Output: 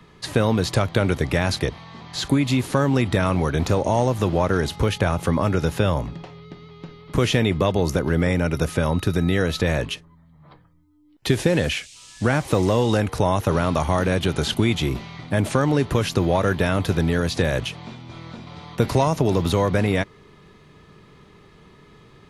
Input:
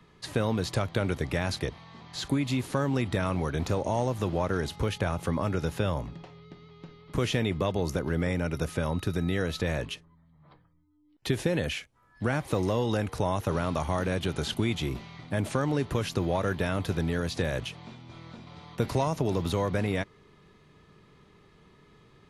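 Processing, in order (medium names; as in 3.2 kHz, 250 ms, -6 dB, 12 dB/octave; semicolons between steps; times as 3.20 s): 11.27–12.99 s: band noise 2.4–8.7 kHz -54 dBFS; trim +8 dB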